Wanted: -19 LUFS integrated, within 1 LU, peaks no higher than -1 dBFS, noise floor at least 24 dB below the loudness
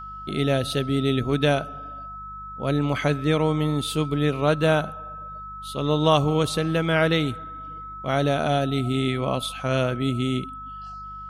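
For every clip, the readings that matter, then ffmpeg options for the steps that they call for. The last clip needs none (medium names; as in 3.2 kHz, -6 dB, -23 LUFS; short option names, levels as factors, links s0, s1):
hum 50 Hz; highest harmonic 200 Hz; hum level -42 dBFS; steady tone 1.3 kHz; tone level -35 dBFS; loudness -23.5 LUFS; peak level -5.0 dBFS; loudness target -19.0 LUFS
-> -af "bandreject=f=50:t=h:w=4,bandreject=f=100:t=h:w=4,bandreject=f=150:t=h:w=4,bandreject=f=200:t=h:w=4"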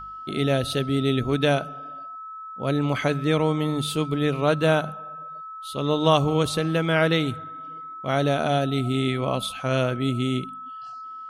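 hum not found; steady tone 1.3 kHz; tone level -35 dBFS
-> -af "bandreject=f=1300:w=30"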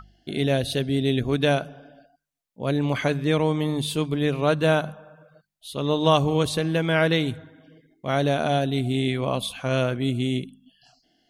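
steady tone not found; loudness -24.0 LUFS; peak level -5.0 dBFS; loudness target -19.0 LUFS
-> -af "volume=1.78,alimiter=limit=0.891:level=0:latency=1"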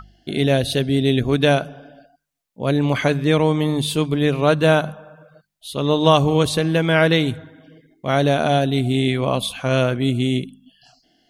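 loudness -19.0 LUFS; peak level -1.0 dBFS; noise floor -70 dBFS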